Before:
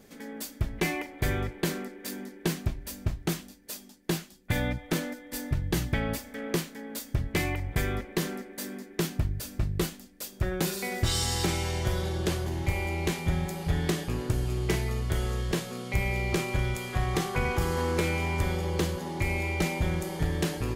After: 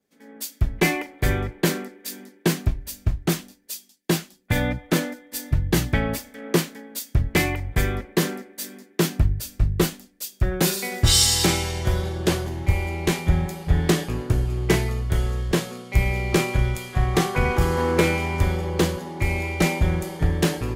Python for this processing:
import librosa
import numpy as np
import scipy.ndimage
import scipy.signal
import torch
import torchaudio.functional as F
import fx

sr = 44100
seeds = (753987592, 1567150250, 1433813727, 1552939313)

y = fx.band_widen(x, sr, depth_pct=100)
y = y * 10.0 ** (6.0 / 20.0)